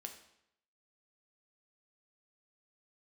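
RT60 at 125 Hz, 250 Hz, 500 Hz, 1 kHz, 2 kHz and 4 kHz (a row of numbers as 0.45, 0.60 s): 0.80, 0.75, 0.75, 0.75, 0.75, 0.70 s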